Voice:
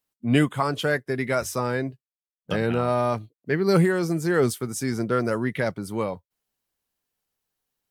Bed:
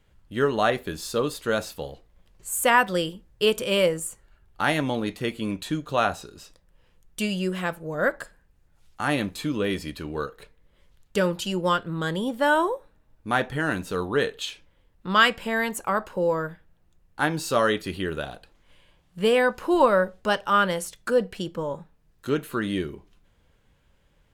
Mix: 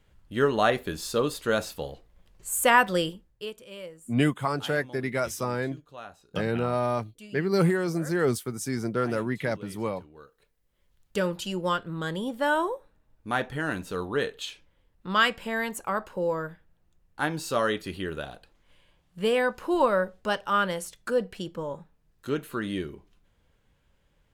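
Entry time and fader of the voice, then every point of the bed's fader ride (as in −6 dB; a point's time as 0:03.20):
3.85 s, −3.5 dB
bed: 0:03.09 −0.5 dB
0:03.58 −20 dB
0:10.37 −20 dB
0:11.16 −4 dB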